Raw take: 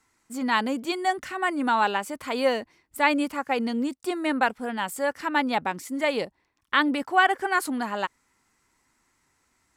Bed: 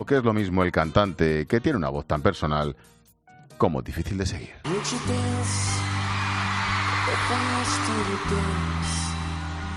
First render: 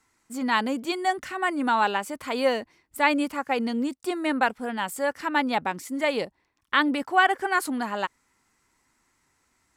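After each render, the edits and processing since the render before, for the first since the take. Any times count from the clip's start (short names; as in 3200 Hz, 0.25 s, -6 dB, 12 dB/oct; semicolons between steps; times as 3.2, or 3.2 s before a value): nothing audible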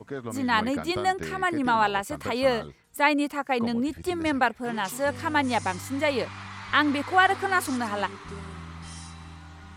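add bed -14 dB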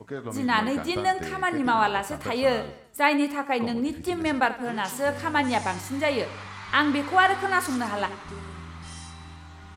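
doubler 28 ms -13 dB; feedback echo 84 ms, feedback 49%, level -15.5 dB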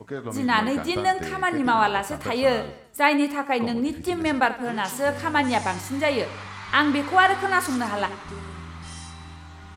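gain +2 dB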